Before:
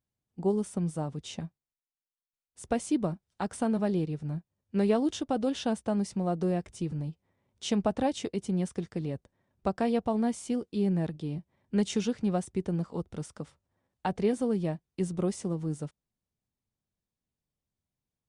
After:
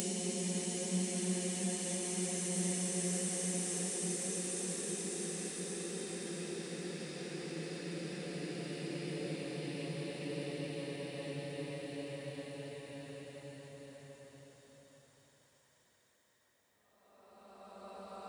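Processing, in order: Paulstretch 18×, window 0.50 s, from 8.5; tilt +4 dB/oct

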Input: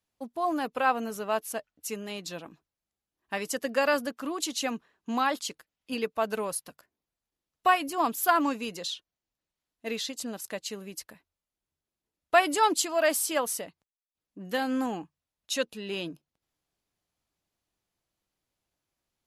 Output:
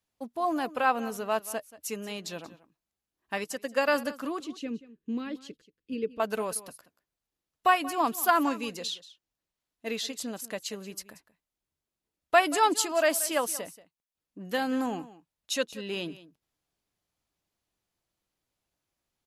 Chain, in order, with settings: 4.4–6.2 EQ curve 460 Hz 0 dB, 730 Hz -25 dB, 2600 Hz -10 dB, 12000 Hz -24 dB; echo 0.182 s -17.5 dB; 3.44–3.88 upward expander 1.5:1, over -42 dBFS

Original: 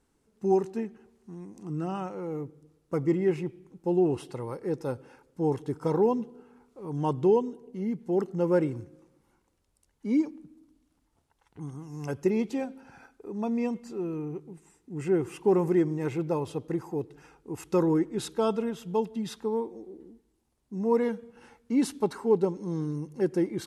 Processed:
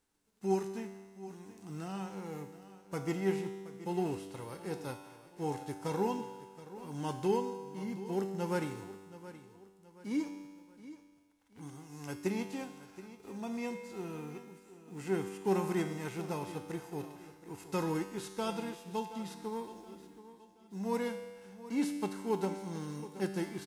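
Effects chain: spectral whitening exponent 0.6; resonator 97 Hz, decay 1.5 s, harmonics all, mix 80%; feedback echo 0.724 s, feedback 39%, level -15.5 dB; gain +3 dB

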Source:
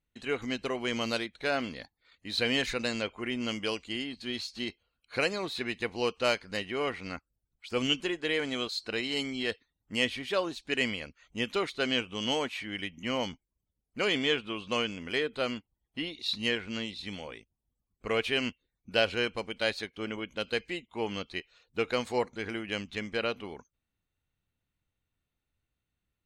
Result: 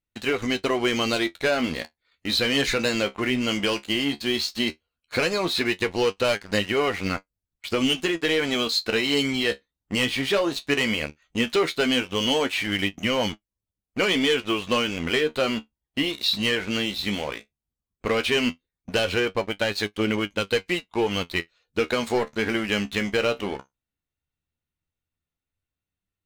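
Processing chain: 19.19–19.74 LPF 1900 Hz -> 3100 Hz 6 dB/oct; sample leveller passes 3; compressor, threshold -21 dBFS, peak gain reduction 6.5 dB; flange 0.15 Hz, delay 9.4 ms, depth 6 ms, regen +49%; gain +5.5 dB

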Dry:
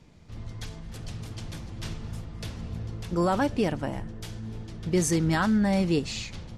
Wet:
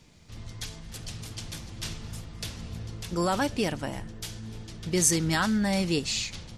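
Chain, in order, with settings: high shelf 2300 Hz +11.5 dB; gain -3 dB

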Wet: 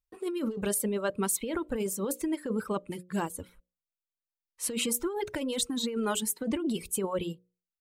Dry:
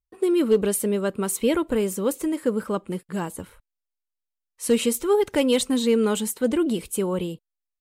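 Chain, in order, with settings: notches 60/120/180/240/300/360/420/480/540/600 Hz; reverb removal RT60 1.4 s; negative-ratio compressor -26 dBFS, ratio -1; gain -4 dB

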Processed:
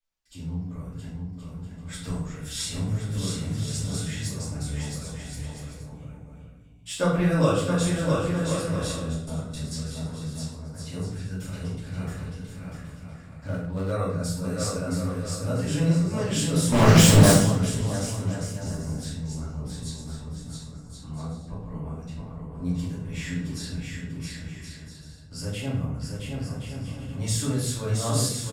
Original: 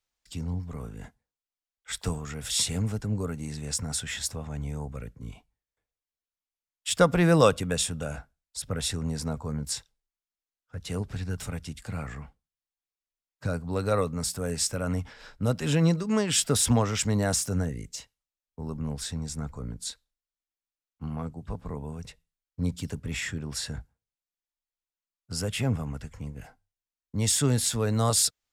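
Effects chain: bouncing-ball echo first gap 0.67 s, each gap 0.6×, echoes 5; 9.14–9.74 gate with hold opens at -19 dBFS; 16.72–17.32 sample leveller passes 5; shoebox room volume 150 m³, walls mixed, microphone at 2.6 m; 13.47–13.92 running maximum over 5 samples; gain -12.5 dB

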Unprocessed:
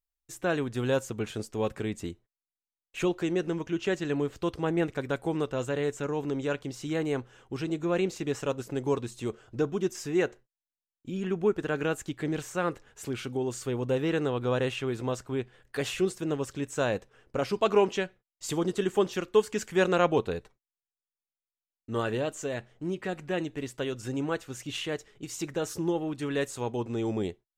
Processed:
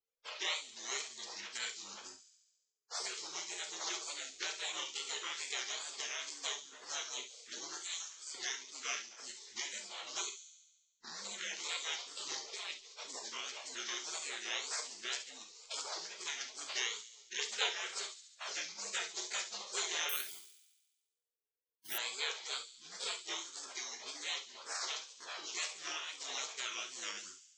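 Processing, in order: spectral dilation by 60 ms; elliptic high-pass 630 Hz, stop band 50 dB; spectral gate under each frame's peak -25 dB weak; 7.82–8.35 differentiator; 12.27–12.71 negative-ratio compressor -57 dBFS, ratio -1; downsampling 16000 Hz; wow and flutter 140 cents; thin delay 70 ms, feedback 55%, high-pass 4700 Hz, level -9.5 dB; non-linear reverb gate 80 ms flat, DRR 5.5 dB; 20.09–21.98 careless resampling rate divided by 3×, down filtered, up zero stuff; three-band squash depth 70%; gain +11.5 dB

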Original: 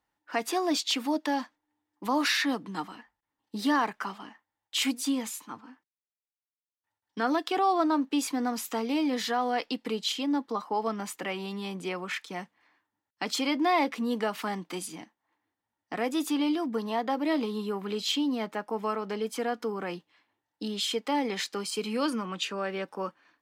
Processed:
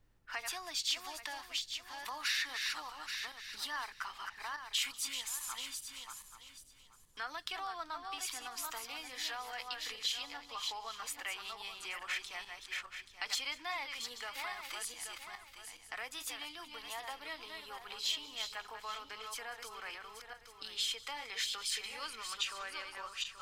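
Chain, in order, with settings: regenerating reverse delay 0.415 s, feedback 40%, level -6 dB; compressor 2.5:1, threshold -36 dBFS, peak gain reduction 11 dB; HPF 1400 Hz 12 dB/oct; added noise brown -70 dBFS; on a send: thin delay 0.192 s, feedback 52%, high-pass 3800 Hz, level -18 dB; on the sum: gain +2 dB

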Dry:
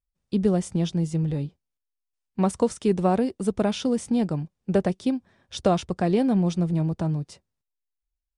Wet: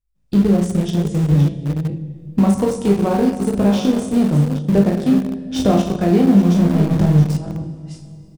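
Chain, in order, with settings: reverse delay 0.381 s, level -11 dB; recorder AGC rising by 14 dB/s; low shelf 250 Hz +10.5 dB; 6.54–7.17 power-law curve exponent 0.7; doubler 35 ms -5 dB; on a send: reverse bouncing-ball echo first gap 20 ms, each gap 1.3×, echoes 5; on the sum: reverb RT60 2.5 s, pre-delay 46 ms, DRR 9.5 dB; in parallel at -10 dB: sample gate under -13.5 dBFS; on the sum: gain -3.5 dB

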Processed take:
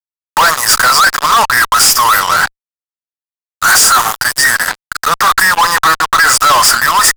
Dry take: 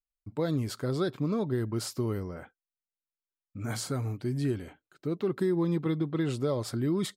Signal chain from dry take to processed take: FFT band-reject 2000–4600 Hz; inverse Chebyshev high-pass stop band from 390 Hz, stop band 50 dB; fuzz box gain 58 dB, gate -58 dBFS; gain +7.5 dB

